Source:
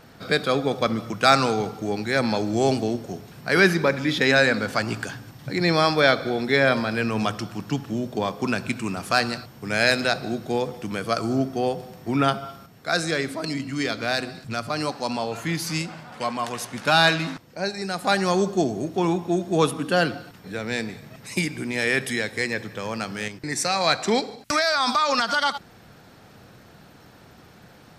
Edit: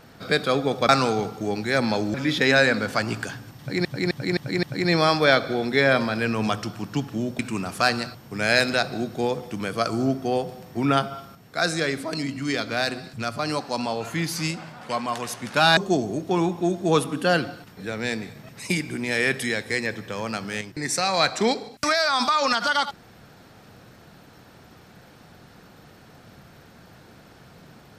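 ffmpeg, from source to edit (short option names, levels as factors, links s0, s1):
-filter_complex "[0:a]asplit=9[s0][s1][s2][s3][s4][s5][s6][s7][s8];[s0]atrim=end=0.892[s9];[s1]atrim=start=1.298:end=2.552[s10];[s2]atrim=start=3.938:end=5.652[s11];[s3]atrim=start=5.388:end=5.652[s12];[s4]atrim=start=5.388:end=5.652[s13];[s5]atrim=start=5.388:end=5.652[s14];[s6]atrim=start=5.388:end=8.152[s15];[s7]atrim=start=8.698:end=17.082[s16];[s8]atrim=start=18.438[s17];[s9][s10]acrossfade=d=0.004:c1=hsin:c2=hsin[s18];[s18][s11]acrossfade=d=0.004:c1=hsin:c2=hsin[s19];[s19][s12]acrossfade=d=0.004:c1=hsin:c2=hsin[s20];[s20][s13]acrossfade=d=0.004:c1=hsin:c2=hsin[s21];[s21][s14]acrossfade=d=0.004:c1=hsin:c2=hsin[s22];[s22][s15]acrossfade=d=0.004:c1=hsin:c2=hsin[s23];[s23][s16]acrossfade=d=0.004:c1=hsin:c2=hsin[s24];[s24][s17]acrossfade=d=0.004:c1=hsin:c2=hsin"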